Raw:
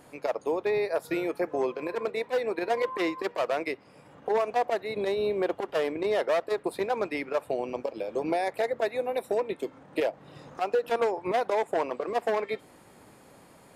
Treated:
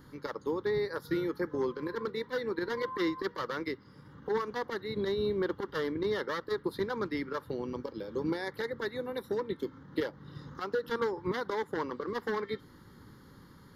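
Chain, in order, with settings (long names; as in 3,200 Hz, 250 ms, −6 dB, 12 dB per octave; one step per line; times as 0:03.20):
low-shelf EQ 170 Hz +10 dB
phaser with its sweep stopped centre 2,500 Hz, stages 6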